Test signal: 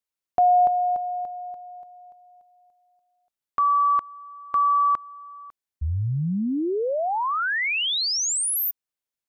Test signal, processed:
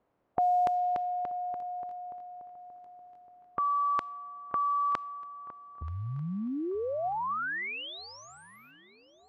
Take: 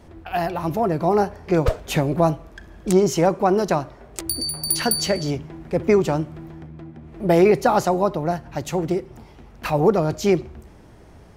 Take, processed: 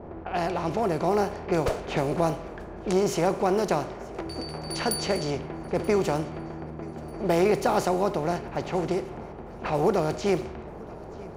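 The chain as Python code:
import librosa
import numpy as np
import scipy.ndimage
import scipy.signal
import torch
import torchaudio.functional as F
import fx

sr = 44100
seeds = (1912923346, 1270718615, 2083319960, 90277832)

p1 = fx.bin_compress(x, sr, power=0.6)
p2 = fx.quant_dither(p1, sr, seeds[0], bits=10, dither='triangular')
p3 = fx.env_lowpass(p2, sr, base_hz=730.0, full_db=-12.0)
p4 = fx.low_shelf(p3, sr, hz=110.0, db=-6.0)
p5 = p4 + fx.echo_swing(p4, sr, ms=1241, ratio=3, feedback_pct=37, wet_db=-22.5, dry=0)
y = p5 * 10.0 ** (-8.5 / 20.0)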